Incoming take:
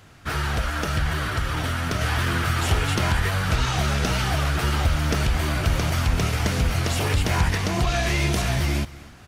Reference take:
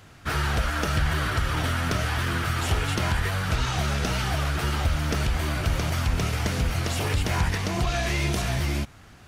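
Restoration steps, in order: inverse comb 252 ms -19.5 dB; trim 0 dB, from 2.01 s -3 dB

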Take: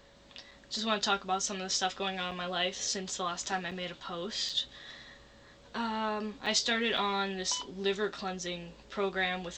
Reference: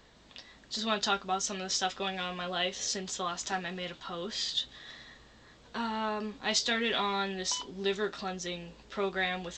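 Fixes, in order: band-stop 560 Hz, Q 30; interpolate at 0.51/2.31/3.71/4.49/6.46/6.97 s, 5.3 ms

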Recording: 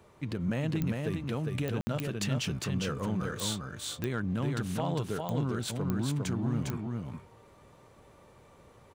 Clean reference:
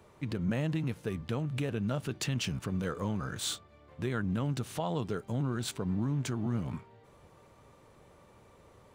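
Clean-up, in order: clip repair -22 dBFS; de-click; room tone fill 1.81–1.87 s; inverse comb 404 ms -3.5 dB

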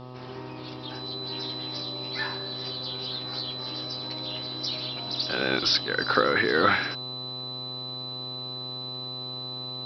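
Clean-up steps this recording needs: de-click; de-hum 126.3 Hz, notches 10; band-stop 4 kHz, Q 30

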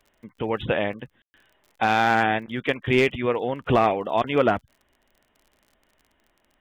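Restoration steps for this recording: clip repair -10 dBFS; de-click; room tone fill 1.22–1.34 s

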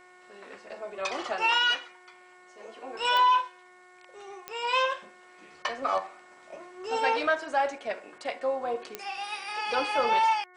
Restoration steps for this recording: de-click; de-hum 363.1 Hz, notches 6

